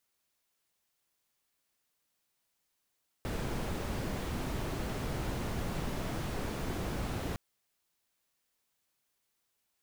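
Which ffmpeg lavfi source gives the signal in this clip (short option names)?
-f lavfi -i "anoisesrc=c=brown:a=0.0832:d=4.11:r=44100:seed=1"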